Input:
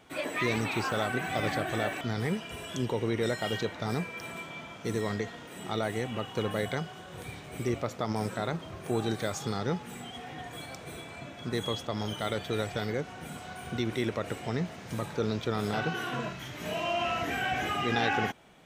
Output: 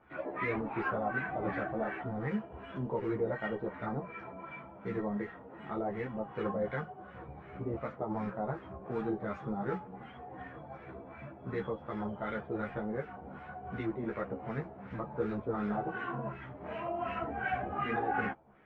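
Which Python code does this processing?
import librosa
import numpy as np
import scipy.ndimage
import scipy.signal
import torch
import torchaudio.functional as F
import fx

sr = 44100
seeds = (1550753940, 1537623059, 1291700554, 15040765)

y = fx.bass_treble(x, sr, bass_db=1, treble_db=-12)
y = fx.mod_noise(y, sr, seeds[0], snr_db=21)
y = fx.doubler(y, sr, ms=15.0, db=-4.5)
y = fx.filter_lfo_lowpass(y, sr, shape='sine', hz=2.7, low_hz=730.0, high_hz=1900.0, q=1.6)
y = fx.ensemble(y, sr)
y = y * 10.0 ** (-3.5 / 20.0)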